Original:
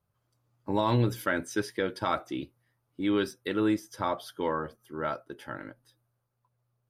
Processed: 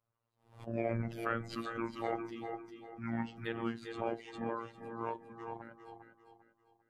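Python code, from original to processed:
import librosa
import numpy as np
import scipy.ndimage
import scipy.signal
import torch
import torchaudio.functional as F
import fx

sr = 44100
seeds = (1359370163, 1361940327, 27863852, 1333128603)

p1 = fx.pitch_ramps(x, sr, semitones=-11.0, every_ms=1123)
p2 = fx.bass_treble(p1, sr, bass_db=-5, treble_db=-13)
p3 = fx.hum_notches(p2, sr, base_hz=50, count=7)
p4 = p3 + 10.0 ** (-9.5 / 20.0) * np.pad(p3, (int(407 * sr / 1000.0), 0))[:len(p3)]
p5 = fx.robotise(p4, sr, hz=115.0)
p6 = fx.over_compress(p5, sr, threshold_db=-30.0, ratio=-1.0)
p7 = p6 + fx.echo_feedback(p6, sr, ms=397, feedback_pct=36, wet_db=-10, dry=0)
p8 = fx.pre_swell(p7, sr, db_per_s=130.0)
y = p8 * librosa.db_to_amplitude(-3.0)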